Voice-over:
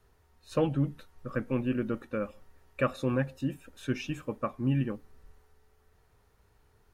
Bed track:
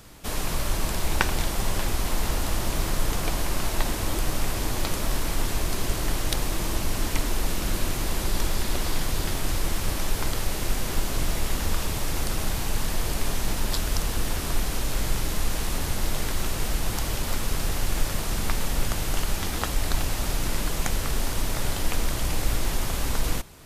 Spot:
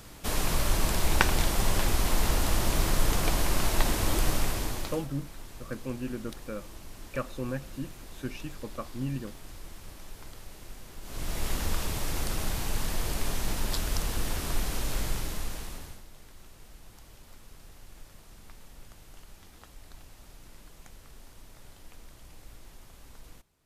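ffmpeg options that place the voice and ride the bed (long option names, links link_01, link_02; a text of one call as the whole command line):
ffmpeg -i stem1.wav -i stem2.wav -filter_complex "[0:a]adelay=4350,volume=-5.5dB[link_01];[1:a]volume=15dB,afade=type=out:start_time=4.28:duration=0.8:silence=0.112202,afade=type=in:start_time=11.01:duration=0.47:silence=0.177828,afade=type=out:start_time=14.95:duration=1.09:silence=0.0944061[link_02];[link_01][link_02]amix=inputs=2:normalize=0" out.wav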